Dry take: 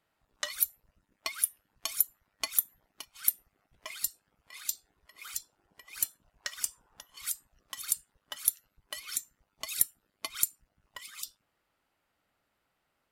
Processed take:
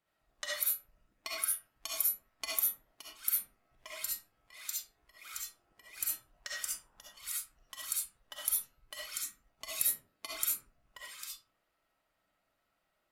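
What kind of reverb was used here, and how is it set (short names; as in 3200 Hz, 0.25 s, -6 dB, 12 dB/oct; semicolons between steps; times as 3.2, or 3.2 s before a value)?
digital reverb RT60 0.45 s, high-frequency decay 0.5×, pre-delay 25 ms, DRR -5 dB; gain -7.5 dB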